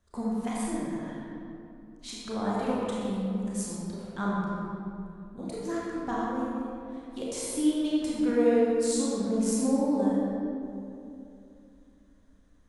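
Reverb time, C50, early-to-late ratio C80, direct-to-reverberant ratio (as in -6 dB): 2.8 s, -4.0 dB, -2.0 dB, -6.5 dB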